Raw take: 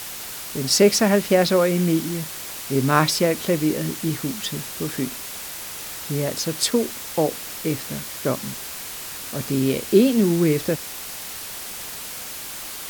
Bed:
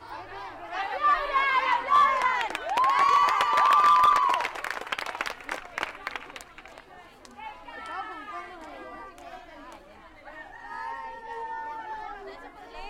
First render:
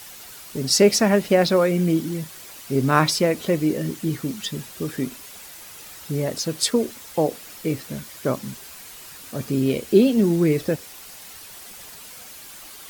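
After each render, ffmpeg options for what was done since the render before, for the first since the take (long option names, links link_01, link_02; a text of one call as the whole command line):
ffmpeg -i in.wav -af "afftdn=noise_reduction=9:noise_floor=-34" out.wav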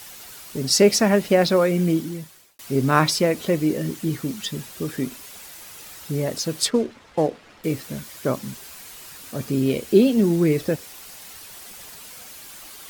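ffmpeg -i in.wav -filter_complex "[0:a]asettb=1/sr,asplit=3[link_01][link_02][link_03];[link_01]atrim=end=6.654[link_04];[link_02]atrim=start=6.65:end=7.64,asetpts=PTS-STARTPTS,afade=type=in:duration=0.004:curve=qsin,afade=type=out:start_time=0.986:duration=0.004:curve=qsin,adynamicsmooth=sensitivity=7:basefreq=2000[link_05];[link_03]atrim=start=7.636[link_06];[link_04][link_05]acrossfade=duration=0.004:curve1=hsin:curve2=qsin[link_07];[link_07][link_06]acrossfade=duration=0.004:curve1=qsin:curve2=hsin,asplit=2[link_08][link_09];[link_08]atrim=end=2.59,asetpts=PTS-STARTPTS,afade=type=out:start_time=1.9:duration=0.69[link_10];[link_09]atrim=start=2.59,asetpts=PTS-STARTPTS,afade=type=in:duration=0.004:curve=hsin[link_11];[link_10][link_11]concat=n=2:v=0:a=1" out.wav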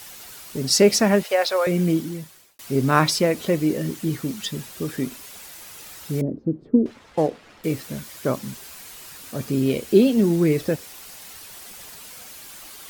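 ffmpeg -i in.wav -filter_complex "[0:a]asettb=1/sr,asplit=3[link_01][link_02][link_03];[link_01]atrim=end=1.234[link_04];[link_02]atrim=start=1.23:end=1.67,asetpts=PTS-STARTPTS,afade=type=in:duration=0.004:curve=qsin,afade=type=out:start_time=0.436:duration=0.004:curve=qsin,highpass=frequency=520:width=0.5412,highpass=frequency=520:width=1.3066[link_05];[link_03]atrim=start=1.666[link_06];[link_04][link_05]acrossfade=duration=0.004:curve1=hsin:curve2=qsin[link_07];[link_07][link_06]acrossfade=duration=0.004:curve1=qsin:curve2=hsin,asettb=1/sr,asplit=3[link_08][link_09][link_10];[link_08]atrim=end=6.214[link_11];[link_09]atrim=start=6.21:end=6.86,asetpts=PTS-STARTPTS,afade=type=in:duration=0.004:curve=qsin,afade=type=out:start_time=0.646:duration=0.004:curve=qsin,lowpass=frequency=300:width_type=q:width=2.4[link_12];[link_10]atrim=start=6.856[link_13];[link_11][link_12]acrossfade=duration=0.004:curve1=hsin:curve2=qsin[link_14];[link_14][link_13]acrossfade=duration=0.004:curve1=qsin:curve2=hsin" out.wav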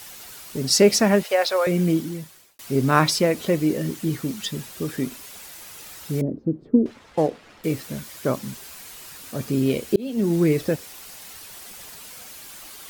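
ffmpeg -i in.wav -filter_complex "[0:a]asplit=2[link_01][link_02];[link_01]atrim=end=9.96,asetpts=PTS-STARTPTS,afade=type=out:start_time=9.956:duration=0.004:curve=hsin[link_03];[link_02]atrim=start=9.96,asetpts=PTS-STARTPTS,afade=type=in:duration=0.41[link_04];[link_03][link_04]concat=n=2:v=0:a=1" out.wav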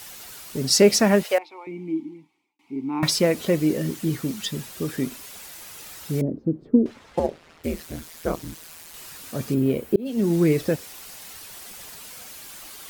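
ffmpeg -i in.wav -filter_complex "[0:a]asettb=1/sr,asplit=3[link_01][link_02][link_03];[link_01]atrim=end=1.384[link_04];[link_02]atrim=start=1.38:end=3.03,asetpts=PTS-STARTPTS,afade=type=in:duration=0.004:curve=qsin,afade=type=out:start_time=1.646:duration=0.004:curve=qsin,asplit=3[link_05][link_06][link_07];[link_05]bandpass=frequency=300:width_type=q:width=8,volume=0dB[link_08];[link_06]bandpass=frequency=870:width_type=q:width=8,volume=-6dB[link_09];[link_07]bandpass=frequency=2240:width_type=q:width=8,volume=-9dB[link_10];[link_08][link_09][link_10]amix=inputs=3:normalize=0[link_11];[link_03]atrim=start=3.026[link_12];[link_04][link_11]acrossfade=duration=0.004:curve1=hsin:curve2=qsin[link_13];[link_13][link_12]acrossfade=duration=0.004:curve1=qsin:curve2=hsin,asettb=1/sr,asplit=3[link_14][link_15][link_16];[link_14]atrim=end=7.194[link_17];[link_15]atrim=start=7.19:end=8.94,asetpts=PTS-STARTPTS,afade=type=in:duration=0.004:curve=qsin,afade=type=out:start_time=1.746:duration=0.004:curve=qsin,aeval=exprs='val(0)*sin(2*PI*81*n/s)':channel_layout=same[link_18];[link_16]atrim=start=8.936[link_19];[link_17][link_18]acrossfade=duration=0.004:curve1=hsin:curve2=qsin[link_20];[link_20][link_19]acrossfade=duration=0.004:curve1=qsin:curve2=hsin,asplit=3[link_21][link_22][link_23];[link_21]afade=type=out:start_time=9.53:duration=0.02[link_24];[link_22]equalizer=frequency=5400:width=0.5:gain=-13,afade=type=in:start_time=9.53:duration=0.02,afade=type=out:start_time=10.05:duration=0.02[link_25];[link_23]afade=type=in:start_time=10.05:duration=0.02[link_26];[link_24][link_25][link_26]amix=inputs=3:normalize=0" out.wav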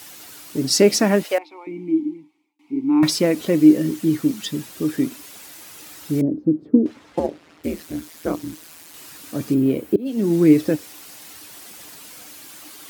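ffmpeg -i in.wav -af "highpass=84,equalizer=frequency=300:width=6.2:gain=13" out.wav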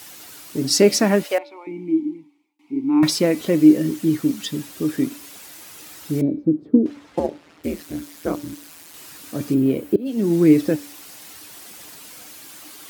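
ffmpeg -i in.wav -af "bandreject=frequency=288.2:width_type=h:width=4,bandreject=frequency=576.4:width_type=h:width=4,bandreject=frequency=864.6:width_type=h:width=4,bandreject=frequency=1152.8:width_type=h:width=4,bandreject=frequency=1441:width_type=h:width=4,bandreject=frequency=1729.2:width_type=h:width=4,bandreject=frequency=2017.4:width_type=h:width=4,bandreject=frequency=2305.6:width_type=h:width=4,bandreject=frequency=2593.8:width_type=h:width=4,bandreject=frequency=2882:width_type=h:width=4,bandreject=frequency=3170.2:width_type=h:width=4,bandreject=frequency=3458.4:width_type=h:width=4,bandreject=frequency=3746.6:width_type=h:width=4,bandreject=frequency=4034.8:width_type=h:width=4,bandreject=frequency=4323:width_type=h:width=4,bandreject=frequency=4611.2:width_type=h:width=4" out.wav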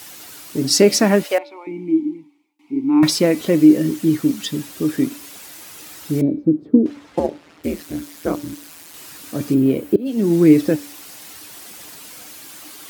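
ffmpeg -i in.wav -af "volume=2.5dB,alimiter=limit=-2dB:level=0:latency=1" out.wav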